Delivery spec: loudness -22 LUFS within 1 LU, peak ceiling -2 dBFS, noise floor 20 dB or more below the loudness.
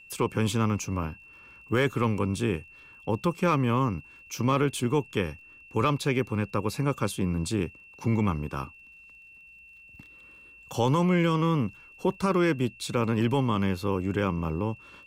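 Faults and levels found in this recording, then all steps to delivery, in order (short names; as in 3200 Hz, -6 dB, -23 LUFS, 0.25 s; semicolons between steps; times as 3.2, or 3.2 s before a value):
ticks 36/s; steady tone 2700 Hz; tone level -49 dBFS; loudness -27.5 LUFS; peak -13.0 dBFS; loudness target -22.0 LUFS
-> de-click; notch 2700 Hz, Q 30; gain +5.5 dB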